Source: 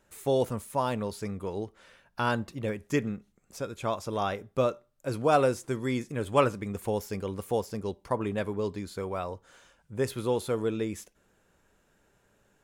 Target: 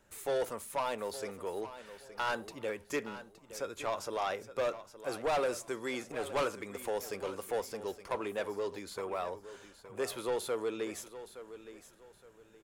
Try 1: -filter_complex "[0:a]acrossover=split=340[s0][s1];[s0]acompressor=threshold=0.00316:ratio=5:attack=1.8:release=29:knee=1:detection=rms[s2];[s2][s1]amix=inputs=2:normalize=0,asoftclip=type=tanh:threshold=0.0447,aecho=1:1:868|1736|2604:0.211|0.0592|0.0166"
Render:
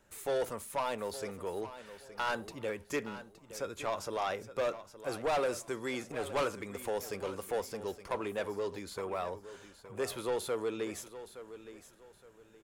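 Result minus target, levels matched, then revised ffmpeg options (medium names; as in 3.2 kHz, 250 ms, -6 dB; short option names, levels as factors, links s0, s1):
compression: peak gain reduction -5.5 dB
-filter_complex "[0:a]acrossover=split=340[s0][s1];[s0]acompressor=threshold=0.00141:ratio=5:attack=1.8:release=29:knee=1:detection=rms[s2];[s2][s1]amix=inputs=2:normalize=0,asoftclip=type=tanh:threshold=0.0447,aecho=1:1:868|1736|2604:0.211|0.0592|0.0166"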